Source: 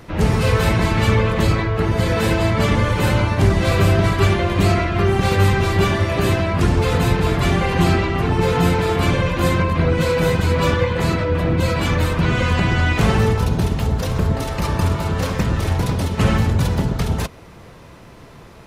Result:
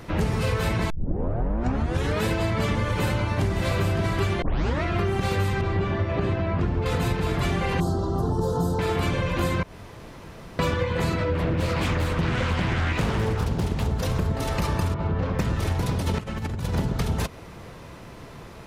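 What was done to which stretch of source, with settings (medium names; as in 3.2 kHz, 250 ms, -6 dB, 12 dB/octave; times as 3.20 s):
0.90 s: tape start 1.35 s
2.91–3.64 s: echo throw 560 ms, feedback 15%, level -9.5 dB
4.42 s: tape start 0.41 s
5.61–6.86 s: tape spacing loss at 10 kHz 25 dB
7.80–8.79 s: Butterworth band-stop 2.3 kHz, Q 0.61
9.63–10.59 s: room tone
11.33–13.92 s: loudspeaker Doppler distortion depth 0.58 ms
14.94–15.39 s: tape spacing loss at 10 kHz 34 dB
15.98–16.75 s: compressor with a negative ratio -23 dBFS, ratio -0.5
whole clip: compression, threshold -21 dBFS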